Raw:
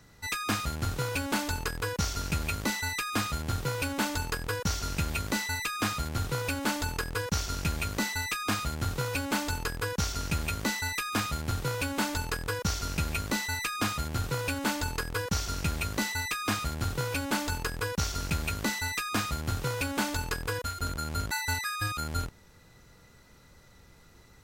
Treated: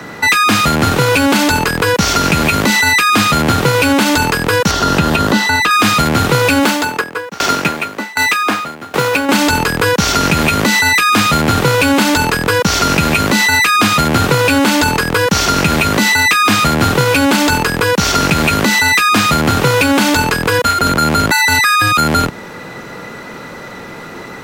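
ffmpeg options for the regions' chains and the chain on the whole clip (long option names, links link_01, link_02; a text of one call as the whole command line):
ffmpeg -i in.wav -filter_complex "[0:a]asettb=1/sr,asplit=3[link_01][link_02][link_03];[link_01]atrim=end=4.714[link_04];[link_02]atrim=start=4.71:end=5.71,asetpts=PTS-STARTPTS,afade=type=in:duration=0.004:curve=qsin,afade=type=out:start_time=0.996:duration=0.004:curve=qsin,acrossover=split=4600[link_05][link_06];[link_06]acompressor=threshold=-46dB:ratio=4:attack=1:release=60[link_07];[link_05][link_07]amix=inputs=2:normalize=0,equalizer=frequency=2300:width=4.4:gain=-11.5[link_08];[link_03]atrim=start=5.706[link_09];[link_04][link_08]acrossfade=duration=0.004:curve1=hsin:curve2=qsin[link_10];[link_10][link_09]acrossfade=duration=0.004:curve1=qsin:curve2=hsin,asettb=1/sr,asplit=3[link_11][link_12][link_13];[link_11]atrim=end=6.634[link_14];[link_12]atrim=start=6.63:end=9.29,asetpts=PTS-STARTPTS,afade=type=in:duration=0.004:curve=qsin,afade=type=out:start_time=2.656:duration=0.004:curve=qsin,highpass=frequency=190:poles=1,acrusher=bits=4:mode=log:mix=0:aa=0.000001,aeval=exprs='val(0)*pow(10,-27*if(lt(mod(1.3*n/s,1),2*abs(1.3)/1000),1-mod(1.3*n/s,1)/(2*abs(1.3)/1000),(mod(1.3*n/s,1)-2*abs(1.3)/1000)/(1-2*abs(1.3)/1000))/20)':channel_layout=same[link_15];[link_13]atrim=start=9.286[link_16];[link_14][link_15]acrossfade=duration=0.004:curve1=hsin:curve2=qsin[link_17];[link_17][link_16]acrossfade=duration=0.004:curve1=qsin:curve2=hsin,acrossover=split=170 2900:gain=0.0631 1 0.224[link_18][link_19][link_20];[link_18][link_19][link_20]amix=inputs=3:normalize=0,acrossover=split=180|3000[link_21][link_22][link_23];[link_22]acompressor=threshold=-42dB:ratio=6[link_24];[link_21][link_24][link_23]amix=inputs=3:normalize=0,alimiter=level_in=33dB:limit=-1dB:release=50:level=0:latency=1,volume=-1dB" out.wav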